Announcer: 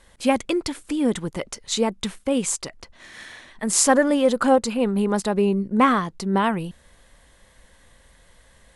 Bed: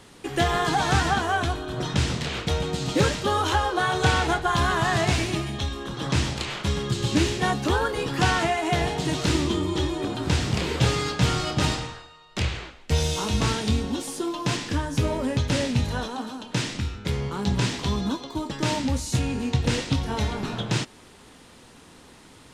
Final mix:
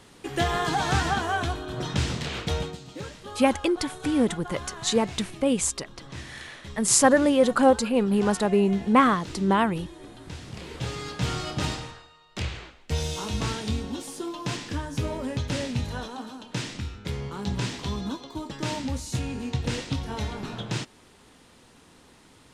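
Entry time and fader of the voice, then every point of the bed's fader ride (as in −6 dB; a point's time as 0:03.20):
3.15 s, −1.0 dB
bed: 0:02.62 −2.5 dB
0:02.83 −16.5 dB
0:10.37 −16.5 dB
0:11.33 −5 dB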